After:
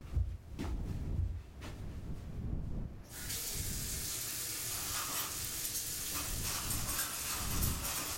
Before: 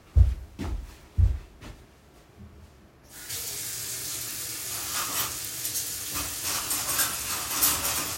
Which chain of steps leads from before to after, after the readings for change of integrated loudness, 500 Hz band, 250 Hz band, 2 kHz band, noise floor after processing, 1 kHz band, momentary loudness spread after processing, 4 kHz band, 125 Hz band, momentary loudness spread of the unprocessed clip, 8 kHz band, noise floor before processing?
-10.0 dB, -7.0 dB, -3.0 dB, -9.0 dB, -49 dBFS, -9.5 dB, 11 LU, -8.5 dB, -10.0 dB, 14 LU, -8.5 dB, -55 dBFS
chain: wind noise 110 Hz -33 dBFS; gate with hold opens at -41 dBFS; compression 2.5:1, threshold -34 dBFS, peak gain reduction 14.5 dB; echo whose repeats swap between lows and highs 136 ms, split 810 Hz, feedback 54%, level -11 dB; trim -3 dB

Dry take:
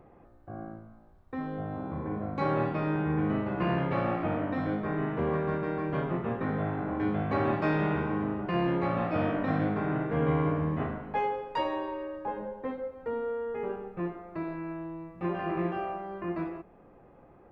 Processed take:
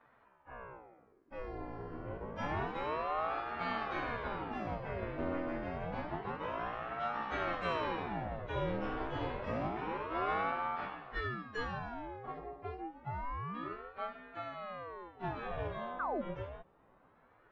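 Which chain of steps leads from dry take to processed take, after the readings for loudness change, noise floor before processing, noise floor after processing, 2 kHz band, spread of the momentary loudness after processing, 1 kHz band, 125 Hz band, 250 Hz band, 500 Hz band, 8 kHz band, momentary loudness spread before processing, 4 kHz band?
-8.0 dB, -56 dBFS, -67 dBFS, -3.0 dB, 10 LU, -4.0 dB, -12.5 dB, -13.0 dB, -8.5 dB, no reading, 9 LU, -1.0 dB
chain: frequency axis rescaled in octaves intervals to 110%; distance through air 67 m; painted sound fall, 15.99–16.22 s, 360–1500 Hz -29 dBFS; ring modulator with a swept carrier 590 Hz, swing 75%, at 0.28 Hz; trim -3.5 dB

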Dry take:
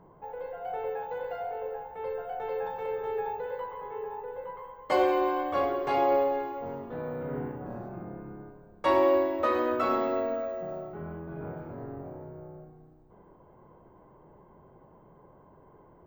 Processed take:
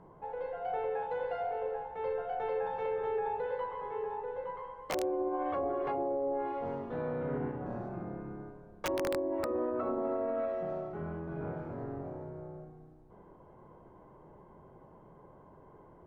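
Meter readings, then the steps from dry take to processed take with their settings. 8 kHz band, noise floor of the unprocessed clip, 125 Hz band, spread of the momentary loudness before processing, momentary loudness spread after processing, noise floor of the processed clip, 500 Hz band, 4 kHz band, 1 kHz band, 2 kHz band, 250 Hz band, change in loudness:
no reading, -57 dBFS, -0.5 dB, 17 LU, 9 LU, -57 dBFS, -4.5 dB, -6.0 dB, -6.0 dB, -6.5 dB, -3.5 dB, -5.0 dB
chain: low-pass that closes with the level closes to 510 Hz, closed at -22 dBFS; integer overflow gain 17.5 dB; peak limiter -25.5 dBFS, peak gain reduction 8 dB

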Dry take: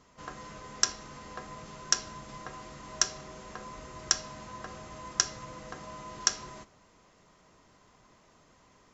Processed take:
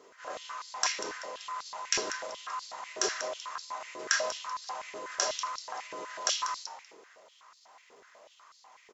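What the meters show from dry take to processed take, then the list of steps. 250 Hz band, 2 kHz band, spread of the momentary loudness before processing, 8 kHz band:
-3.5 dB, +4.5 dB, 16 LU, no reading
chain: frequency-shifting echo 192 ms, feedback 33%, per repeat -91 Hz, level -14.5 dB; transient shaper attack -8 dB, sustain +5 dB; step-sequenced high-pass 8.1 Hz 410–4400 Hz; trim +2 dB

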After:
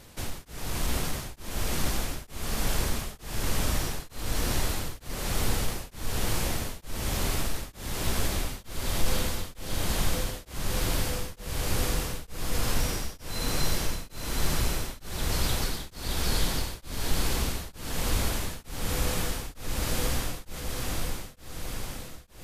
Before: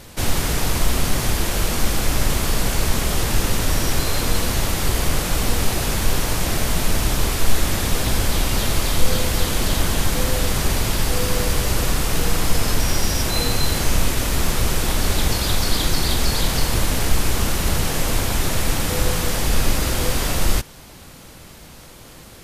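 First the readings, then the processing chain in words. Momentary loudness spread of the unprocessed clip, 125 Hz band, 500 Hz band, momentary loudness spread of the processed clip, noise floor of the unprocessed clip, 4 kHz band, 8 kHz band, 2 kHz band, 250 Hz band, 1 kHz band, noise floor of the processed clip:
1 LU, -10.0 dB, -10.0 dB, 8 LU, -42 dBFS, -10.0 dB, -10.0 dB, -10.0 dB, -10.0 dB, -10.0 dB, -50 dBFS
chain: saturation -4 dBFS, distortion -26 dB; on a send: echo that smears into a reverb 651 ms, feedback 65%, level -3.5 dB; on the sum: tremolo of two beating tones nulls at 1.1 Hz; trim -9 dB

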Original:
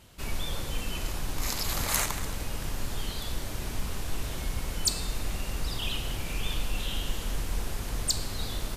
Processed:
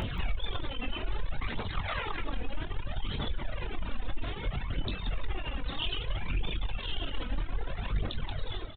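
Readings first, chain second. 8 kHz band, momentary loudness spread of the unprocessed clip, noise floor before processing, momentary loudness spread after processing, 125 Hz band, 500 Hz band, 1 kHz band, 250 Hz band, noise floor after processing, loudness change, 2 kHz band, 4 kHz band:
under -40 dB, 7 LU, -37 dBFS, 5 LU, -1.0 dB, -1.0 dB, -1.0 dB, -1.5 dB, -39 dBFS, -4.0 dB, -1.5 dB, -4.5 dB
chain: fade out at the end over 0.52 s; upward compressor, threshold -30 dBFS; phaser 0.62 Hz, delay 4.1 ms, feedback 47%; saturation -22.5 dBFS, distortion -13 dB; resampled via 8 kHz; feedback delay 180 ms, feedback 43%, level -8 dB; peak limiter -28.5 dBFS, peak gain reduction 9 dB; doubling 22 ms -7.5 dB; reverb removal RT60 2 s; trim +6 dB

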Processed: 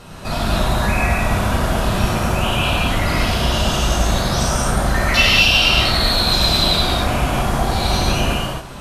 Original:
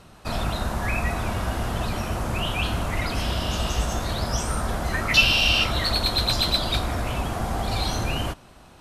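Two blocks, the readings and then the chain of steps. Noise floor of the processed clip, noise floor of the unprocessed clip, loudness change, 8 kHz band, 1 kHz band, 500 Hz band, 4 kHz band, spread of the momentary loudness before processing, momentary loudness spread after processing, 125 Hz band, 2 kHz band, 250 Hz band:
-32 dBFS, -49 dBFS, +7.5 dB, +8.0 dB, +8.5 dB, +8.5 dB, +7.0 dB, 10 LU, 7 LU, +7.5 dB, +7.0 dB, +9.0 dB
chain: in parallel at -2 dB: compressor with a negative ratio -33 dBFS, ratio -1; on the sum: gated-style reverb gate 300 ms flat, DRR -7 dB; trim -2 dB

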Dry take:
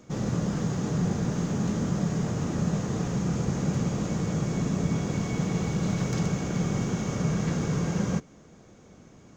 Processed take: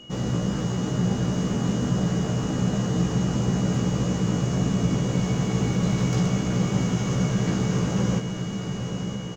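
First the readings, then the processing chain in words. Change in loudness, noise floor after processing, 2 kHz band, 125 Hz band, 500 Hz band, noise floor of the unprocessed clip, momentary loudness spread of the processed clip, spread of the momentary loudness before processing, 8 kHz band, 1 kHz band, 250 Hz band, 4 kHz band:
+3.5 dB, -31 dBFS, +3.0 dB, +4.0 dB, +3.5 dB, -53 dBFS, 4 LU, 1 LU, +3.5 dB, +3.5 dB, +4.0 dB, +7.5 dB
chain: doubling 16 ms -4.5 dB; echo that smears into a reverb 981 ms, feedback 59%, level -7 dB; whistle 2.9 kHz -46 dBFS; trim +1 dB

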